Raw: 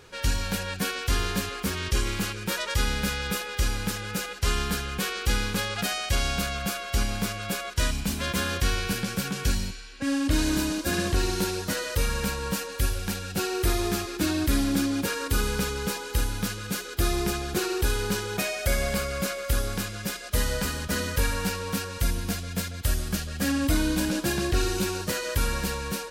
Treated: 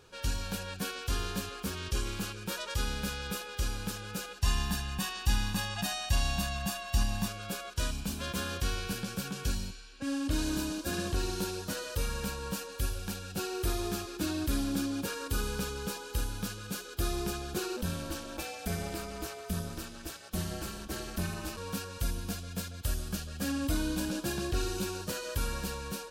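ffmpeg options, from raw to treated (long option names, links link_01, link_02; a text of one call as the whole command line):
ffmpeg -i in.wav -filter_complex "[0:a]asettb=1/sr,asplit=3[link_01][link_02][link_03];[link_01]atrim=end=4.424[link_04];[link_02]atrim=start=4.42:end=7.28,asetpts=PTS-STARTPTS,afade=type=in:duration=0.004:curve=qsin,afade=type=out:start_time=2.856:duration=0.004:curve=qsin,aecho=1:1:1.1:0.83,atrim=end_sample=126126[link_05];[link_03]atrim=start=7.276[link_06];[link_04][link_05]acrossfade=duration=0.004:curve1=hsin:curve2=qsin[link_07];[link_07][link_06]acrossfade=duration=0.004:curve1=qsin:curve2=hsin,asplit=3[link_08][link_09][link_10];[link_08]afade=type=out:start_time=17.76:duration=0.02[link_11];[link_09]aeval=exprs='val(0)*sin(2*PI*130*n/s)':channel_layout=same,afade=type=in:start_time=17.76:duration=0.02,afade=type=out:start_time=21.56:duration=0.02[link_12];[link_10]afade=type=in:start_time=21.56:duration=0.02[link_13];[link_11][link_12][link_13]amix=inputs=3:normalize=0,equalizer=frequency=2000:width_type=o:width=0.24:gain=-10.5,volume=-7dB" out.wav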